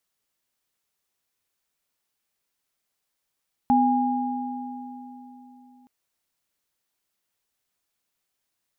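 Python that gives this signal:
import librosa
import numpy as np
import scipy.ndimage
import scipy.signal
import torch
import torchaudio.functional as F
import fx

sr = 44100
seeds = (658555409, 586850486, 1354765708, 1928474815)

y = fx.additive_free(sr, length_s=2.17, hz=251.0, level_db=-18, upper_db=(1.0,), decay_s=3.75, upper_decays_s=(3.09,), upper_hz=(817.0,))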